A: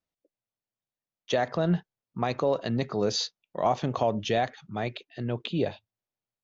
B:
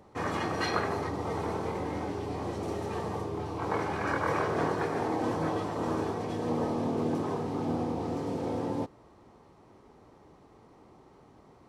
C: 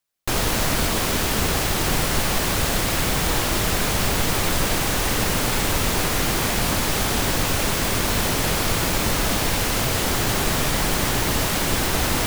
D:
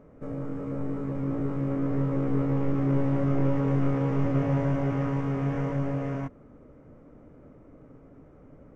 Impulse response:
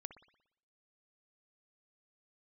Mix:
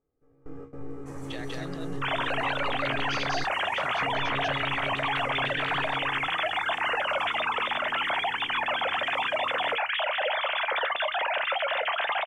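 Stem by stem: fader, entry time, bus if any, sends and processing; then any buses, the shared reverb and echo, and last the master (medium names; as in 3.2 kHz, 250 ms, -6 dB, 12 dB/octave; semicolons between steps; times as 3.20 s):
-11.0 dB, 0.00 s, bus A, no send, echo send -4 dB, level-controlled noise filter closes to 1.4 kHz; high-order bell 3.2 kHz +13.5 dB 2.3 oct; compression 2.5:1, threshold -25 dBFS, peak gain reduction 8.5 dB
-11.5 dB, 0.90 s, no bus, no send, no echo send, resonant high shelf 5.4 kHz +12 dB, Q 1.5; compression 3:1, threshold -34 dBFS, peak gain reduction 8 dB; vibrato 0.58 Hz 44 cents
-2.0 dB, 1.75 s, bus A, no send, no echo send, formants replaced by sine waves
-5.0 dB, 0.00 s, muted 3.44–4.02 s, bus A, no send, no echo send, comb 2.5 ms, depth 65%
bus A: 0.0 dB, feedback comb 78 Hz, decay 0.19 s, harmonics all, mix 50%; peak limiter -19.5 dBFS, peak gain reduction 6.5 dB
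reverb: none
echo: delay 193 ms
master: gate with hold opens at -31 dBFS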